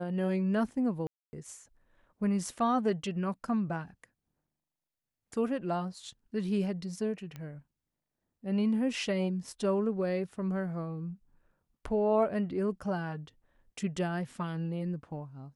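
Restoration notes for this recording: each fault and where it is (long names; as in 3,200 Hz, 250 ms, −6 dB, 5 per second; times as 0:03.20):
0:01.07–0:01.33: drop-out 260 ms
0:07.36: click −28 dBFS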